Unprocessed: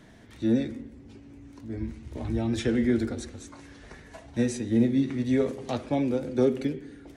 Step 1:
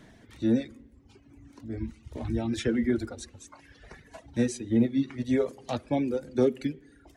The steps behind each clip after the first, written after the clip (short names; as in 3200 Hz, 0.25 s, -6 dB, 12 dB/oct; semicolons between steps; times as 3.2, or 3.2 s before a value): reverb removal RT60 1.4 s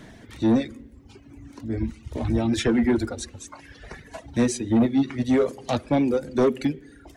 soft clip -21.5 dBFS, distortion -12 dB; gain +8 dB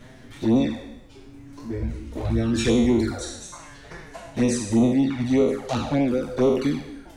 spectral trails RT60 0.92 s; envelope flanger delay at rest 9.3 ms, full sweep at -15 dBFS; added noise brown -50 dBFS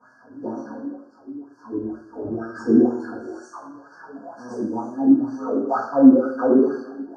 wah 2.1 Hz 270–2300 Hz, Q 5.7; brick-wall FIR band-stop 1700–4300 Hz; reverb RT60 1.0 s, pre-delay 3 ms, DRR -12.5 dB; gain +2.5 dB